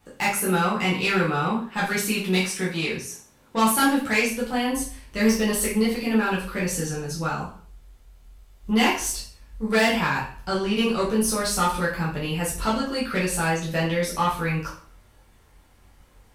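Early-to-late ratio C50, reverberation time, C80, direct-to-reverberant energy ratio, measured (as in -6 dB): 5.5 dB, 0.50 s, 10.0 dB, -7.5 dB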